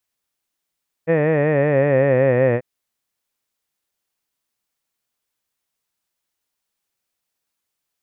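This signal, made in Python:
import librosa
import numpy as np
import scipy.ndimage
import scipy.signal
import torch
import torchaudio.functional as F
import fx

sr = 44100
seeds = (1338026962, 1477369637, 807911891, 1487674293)

y = fx.vowel(sr, seeds[0], length_s=1.54, word='head', hz=159.0, glide_st=-4.5, vibrato_hz=5.3, vibrato_st=0.9)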